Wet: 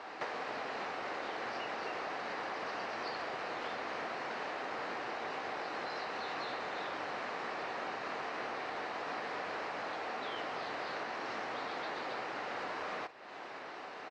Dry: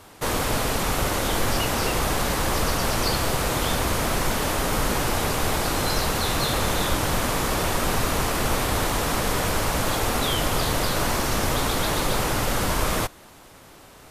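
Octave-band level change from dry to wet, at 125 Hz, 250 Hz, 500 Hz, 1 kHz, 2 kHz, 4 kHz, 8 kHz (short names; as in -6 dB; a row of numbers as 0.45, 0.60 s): -33.0, -20.5, -14.0, -12.0, -11.5, -19.0, -32.5 dB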